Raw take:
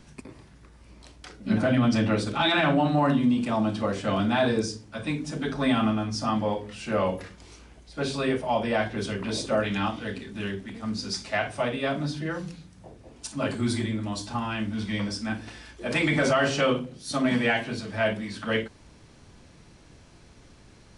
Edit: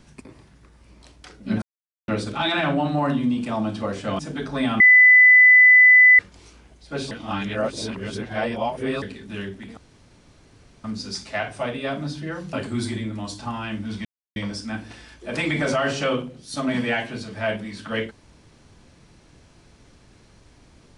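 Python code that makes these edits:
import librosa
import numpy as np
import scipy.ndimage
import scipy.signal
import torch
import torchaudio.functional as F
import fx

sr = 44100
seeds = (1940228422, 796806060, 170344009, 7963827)

y = fx.edit(x, sr, fx.silence(start_s=1.62, length_s=0.46),
    fx.cut(start_s=4.19, length_s=1.06),
    fx.bleep(start_s=5.86, length_s=1.39, hz=2000.0, db=-8.0),
    fx.reverse_span(start_s=8.17, length_s=1.91),
    fx.insert_room_tone(at_s=10.83, length_s=1.07),
    fx.cut(start_s=12.52, length_s=0.89),
    fx.insert_silence(at_s=14.93, length_s=0.31), tone=tone)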